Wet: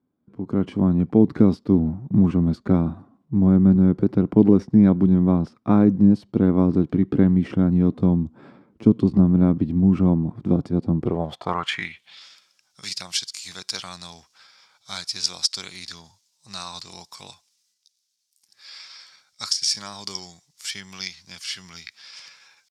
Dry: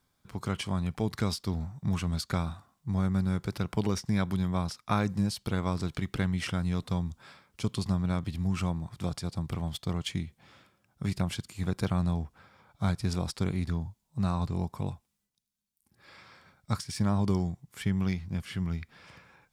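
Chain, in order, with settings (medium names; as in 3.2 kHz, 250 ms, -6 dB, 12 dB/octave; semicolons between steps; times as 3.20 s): level rider gain up to 12.5 dB; band-pass sweep 280 Hz -> 5.3 kHz, 9.44–10.57 s; tempo 0.86×; trim +9 dB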